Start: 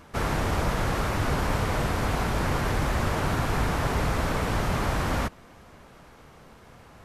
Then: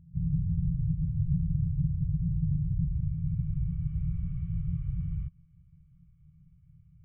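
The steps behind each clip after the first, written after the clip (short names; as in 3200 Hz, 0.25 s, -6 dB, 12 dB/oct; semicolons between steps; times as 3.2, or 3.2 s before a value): low-pass sweep 180 Hz -> 450 Hz, 2.5–4.05; vocal tract filter i; FFT band-reject 180–1100 Hz; gain +9 dB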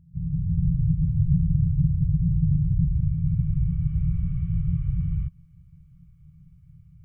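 AGC gain up to 7 dB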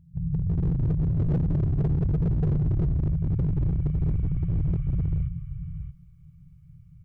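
echo 0.627 s -9.5 dB; hard clip -20 dBFS, distortion -11 dB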